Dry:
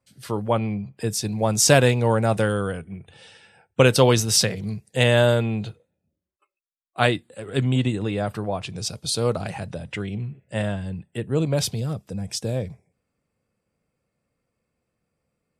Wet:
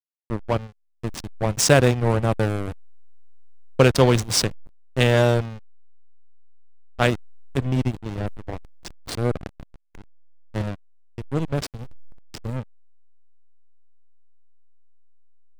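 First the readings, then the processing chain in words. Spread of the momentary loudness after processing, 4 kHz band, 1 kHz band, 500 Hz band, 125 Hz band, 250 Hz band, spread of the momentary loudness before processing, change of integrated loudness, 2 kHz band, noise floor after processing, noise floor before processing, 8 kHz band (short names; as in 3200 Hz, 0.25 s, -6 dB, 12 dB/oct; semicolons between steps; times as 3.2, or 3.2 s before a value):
19 LU, -3.0 dB, -1.5 dB, -1.5 dB, -0.5 dB, -1.0 dB, 15 LU, 0.0 dB, -1.5 dB, -65 dBFS, -80 dBFS, -3.5 dB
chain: backlash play -15 dBFS; gain +1 dB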